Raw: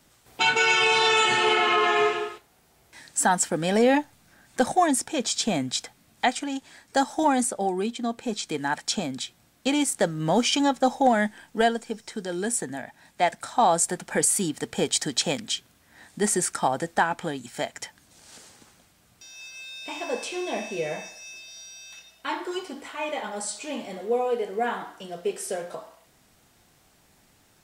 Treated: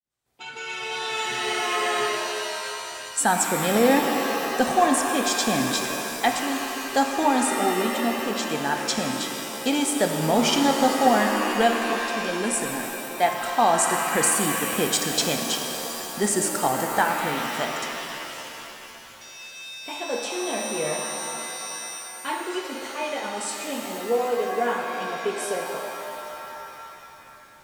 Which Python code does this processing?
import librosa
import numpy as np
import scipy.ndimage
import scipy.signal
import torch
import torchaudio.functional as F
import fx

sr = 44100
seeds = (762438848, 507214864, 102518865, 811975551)

y = fx.fade_in_head(x, sr, length_s=3.29)
y = fx.rev_shimmer(y, sr, seeds[0], rt60_s=3.2, semitones=7, shimmer_db=-2, drr_db=4.0)